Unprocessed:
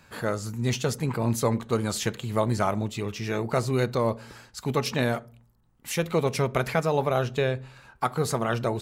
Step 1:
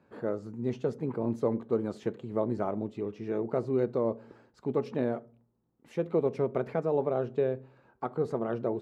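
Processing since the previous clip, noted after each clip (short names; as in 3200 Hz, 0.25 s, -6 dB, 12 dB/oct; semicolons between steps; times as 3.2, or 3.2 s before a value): band-pass 360 Hz, Q 1.3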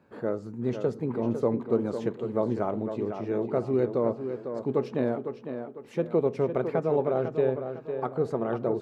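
tape echo 0.502 s, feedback 40%, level -7 dB, low-pass 4300 Hz; gain +2.5 dB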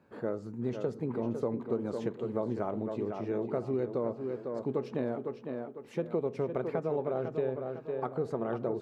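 compressor 3:1, threshold -26 dBFS, peak gain reduction 6 dB; gain -2.5 dB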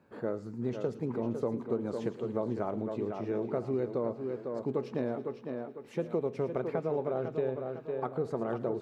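thin delay 0.111 s, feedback 51%, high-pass 2400 Hz, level -11 dB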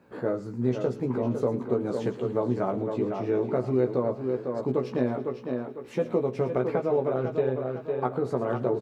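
doubler 16 ms -4 dB; gain +5 dB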